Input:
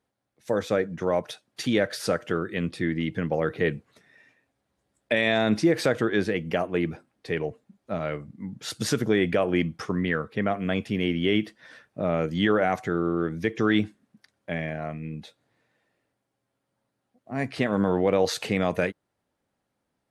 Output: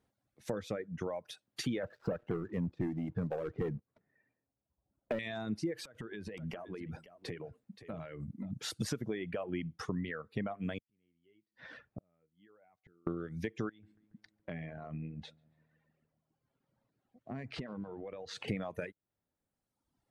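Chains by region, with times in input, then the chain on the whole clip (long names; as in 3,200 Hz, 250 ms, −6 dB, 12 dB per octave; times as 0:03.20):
0:01.83–0:05.19: low-pass filter 1,100 Hz + leveller curve on the samples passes 2
0:05.85–0:08.51: downward compressor 16 to 1, threshold −37 dBFS + single-tap delay 525 ms −11.5 dB
0:10.78–0:13.07: low-pass filter 3,600 Hz + gate with flip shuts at −30 dBFS, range −41 dB
0:13.69–0:18.48: high-frequency loss of the air 99 metres + downward compressor 8 to 1, threshold −37 dBFS + feedback echo with a low-pass in the loop 141 ms, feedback 71%, low-pass 2,900 Hz, level −21 dB
whole clip: downward compressor 4 to 1, threshold −36 dBFS; low-shelf EQ 230 Hz +7.5 dB; reverb reduction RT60 1.5 s; level −1.5 dB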